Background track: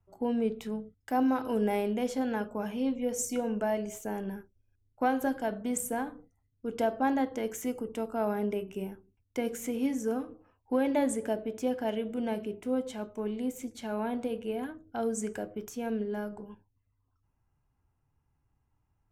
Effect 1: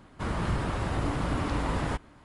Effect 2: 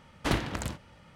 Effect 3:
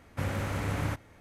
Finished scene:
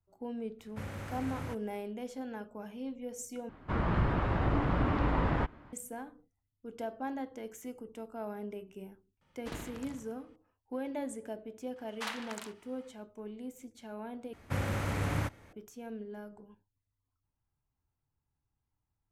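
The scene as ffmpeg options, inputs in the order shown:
ffmpeg -i bed.wav -i cue0.wav -i cue1.wav -i cue2.wav -filter_complex "[3:a]asplit=2[link_01][link_02];[2:a]asplit=2[link_03][link_04];[0:a]volume=-10dB[link_05];[1:a]lowpass=2400[link_06];[link_03]asplit=2[link_07][link_08];[link_08]adelay=76,lowpass=frequency=4800:poles=1,volume=-4dB,asplit=2[link_09][link_10];[link_10]adelay=76,lowpass=frequency=4800:poles=1,volume=0.51,asplit=2[link_11][link_12];[link_12]adelay=76,lowpass=frequency=4800:poles=1,volume=0.51,asplit=2[link_13][link_14];[link_14]adelay=76,lowpass=frequency=4800:poles=1,volume=0.51,asplit=2[link_15][link_16];[link_16]adelay=76,lowpass=frequency=4800:poles=1,volume=0.51,asplit=2[link_17][link_18];[link_18]adelay=76,lowpass=frequency=4800:poles=1,volume=0.51,asplit=2[link_19][link_20];[link_20]adelay=76,lowpass=frequency=4800:poles=1,volume=0.51[link_21];[link_07][link_09][link_11][link_13][link_15][link_17][link_19][link_21]amix=inputs=8:normalize=0[link_22];[link_04]highpass=frequency=790:width=0.5412,highpass=frequency=790:width=1.3066[link_23];[link_05]asplit=3[link_24][link_25][link_26];[link_24]atrim=end=3.494[link_27];[link_06]atrim=end=2.24[link_28];[link_25]atrim=start=5.726:end=14.334[link_29];[link_02]atrim=end=1.2,asetpts=PTS-STARTPTS,volume=-1dB[link_30];[link_26]atrim=start=15.526[link_31];[link_01]atrim=end=1.2,asetpts=PTS-STARTPTS,volume=-9.5dB,afade=type=in:duration=0.004:curve=hsin,afade=type=out:start_time=1.196:duration=0.004:curve=hsin,adelay=590[link_32];[link_22]atrim=end=1.15,asetpts=PTS-STARTPTS,volume=-16dB,afade=type=in:duration=0.004:curve=hsin,afade=type=out:start_time=1.146:duration=0.004:curve=hsin,adelay=9210[link_33];[link_23]atrim=end=1.15,asetpts=PTS-STARTPTS,volume=-5.5dB,afade=type=in:duration=0.004:curve=hsin,afade=type=out:start_time=1.146:duration=0.004:curve=hsin,adelay=11760[link_34];[link_27][link_28]acrossfade=duration=0.004:curve1=hsin:curve2=hsin[link_35];[link_35][link_29]acrossfade=duration=0.004:curve1=hsin:curve2=hsin[link_36];[link_36][link_30]acrossfade=duration=0.004:curve1=hsin:curve2=hsin[link_37];[link_37][link_31]acrossfade=duration=0.004:curve1=hsin:curve2=hsin[link_38];[link_38][link_32][link_33][link_34]amix=inputs=4:normalize=0" out.wav

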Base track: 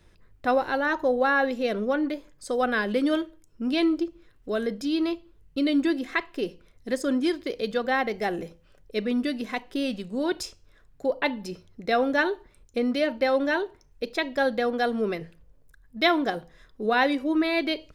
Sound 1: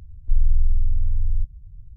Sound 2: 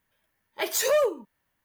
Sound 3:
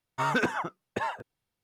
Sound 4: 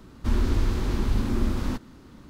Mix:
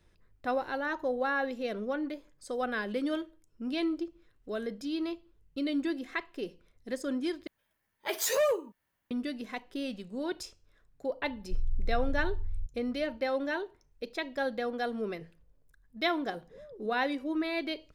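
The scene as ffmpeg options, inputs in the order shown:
ffmpeg -i bed.wav -i cue0.wav -i cue1.wav -filter_complex "[2:a]asplit=2[link_01][link_02];[0:a]volume=-8dB[link_03];[link_02]lowpass=frequency=200:width_type=q:width=2.2[link_04];[link_03]asplit=2[link_05][link_06];[link_05]atrim=end=7.474[link_07];[link_01]atrim=end=1.64,asetpts=PTS-STARTPTS,volume=-4.5dB[link_08];[link_06]atrim=start=9.106[link_09];[1:a]atrim=end=1.96,asetpts=PTS-STARTPTS,volume=-13.5dB,afade=type=in:duration=0.004:curve=hsin,afade=type=out:start_time=1.956:duration=0.004:curve=hsin,adelay=494802S[link_10];[link_04]atrim=end=1.64,asetpts=PTS-STARTPTS,volume=-11dB,afade=type=in:duration=0.004:curve=hsin,afade=type=out:start_time=1.636:duration=0.004:curve=hsin,adelay=15680[link_11];[link_07][link_08]acrossfade=duration=0.004:curve1=hsin:curve2=hsin[link_12];[link_12][link_09]acrossfade=duration=0.004:curve1=hsin:curve2=hsin[link_13];[link_13][link_10][link_11]amix=inputs=3:normalize=0" out.wav

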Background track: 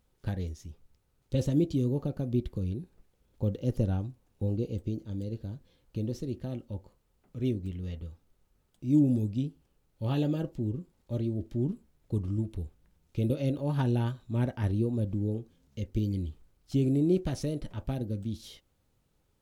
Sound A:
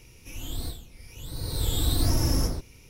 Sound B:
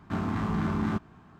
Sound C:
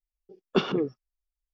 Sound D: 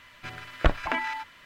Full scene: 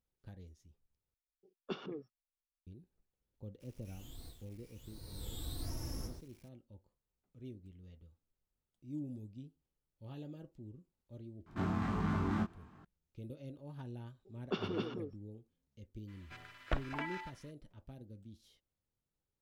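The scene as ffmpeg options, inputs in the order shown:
ffmpeg -i bed.wav -i cue0.wav -i cue1.wav -i cue2.wav -i cue3.wav -filter_complex "[3:a]asplit=2[link_01][link_02];[0:a]volume=-19dB[link_03];[1:a]acrusher=bits=7:mix=0:aa=0.000001[link_04];[2:a]flanger=delay=20:depth=2.7:speed=1.5[link_05];[link_02]aecho=1:1:102|259.5:0.562|0.708[link_06];[link_03]asplit=2[link_07][link_08];[link_07]atrim=end=1.144[link_09];[link_01]atrim=end=1.53,asetpts=PTS-STARTPTS,volume=-17.5dB[link_10];[link_08]atrim=start=2.666[link_11];[link_04]atrim=end=2.89,asetpts=PTS-STARTPTS,volume=-18dB,afade=type=in:duration=0.004:curve=hsin,afade=type=out:start_time=2.886:duration=0.004:curve=hsin,adelay=3600[link_12];[link_05]atrim=end=1.39,asetpts=PTS-STARTPTS,volume=-2.5dB,afade=type=in:duration=0.004:curve=hsin,afade=type=out:start_time=1.386:duration=0.004:curve=hsin,adelay=505386S[link_13];[link_06]atrim=end=1.53,asetpts=PTS-STARTPTS,volume=-13.5dB,afade=type=in:duration=0.004:curve=hsin,afade=type=out:start_time=1.526:duration=0.004:curve=hsin,adelay=615636S[link_14];[4:a]atrim=end=1.45,asetpts=PTS-STARTPTS,volume=-13dB,afade=type=in:duration=0.02,afade=type=out:start_time=1.43:duration=0.02,adelay=16070[link_15];[link_09][link_10]acrossfade=duration=0.004:curve1=hsin:curve2=hsin[link_16];[link_16][link_11]acrossfade=duration=0.004:curve1=hsin:curve2=hsin[link_17];[link_17][link_12][link_13][link_14][link_15]amix=inputs=5:normalize=0" out.wav

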